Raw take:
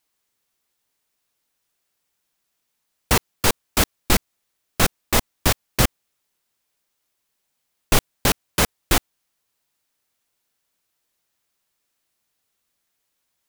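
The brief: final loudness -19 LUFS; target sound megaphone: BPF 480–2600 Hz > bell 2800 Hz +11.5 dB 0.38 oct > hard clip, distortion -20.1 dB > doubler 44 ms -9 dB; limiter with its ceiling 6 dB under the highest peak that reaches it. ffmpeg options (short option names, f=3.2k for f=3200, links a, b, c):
-filter_complex "[0:a]alimiter=limit=-7.5dB:level=0:latency=1,highpass=480,lowpass=2.6k,equalizer=f=2.8k:t=o:w=0.38:g=11.5,asoftclip=type=hard:threshold=-15.5dB,asplit=2[a][b];[b]adelay=44,volume=-9dB[c];[a][c]amix=inputs=2:normalize=0,volume=7.5dB"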